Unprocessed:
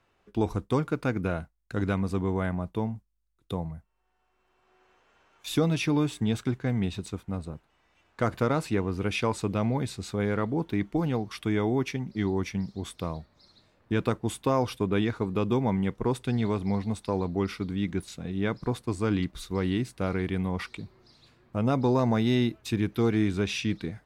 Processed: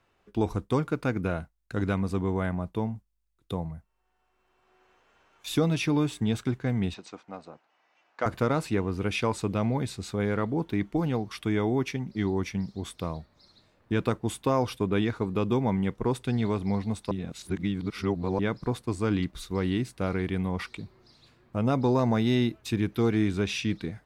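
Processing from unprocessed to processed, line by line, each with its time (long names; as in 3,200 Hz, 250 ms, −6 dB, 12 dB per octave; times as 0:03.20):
0:06.94–0:08.26: loudspeaker in its box 390–6,200 Hz, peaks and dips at 400 Hz −5 dB, 750 Hz +4 dB, 3,600 Hz −5 dB
0:17.11–0:18.39: reverse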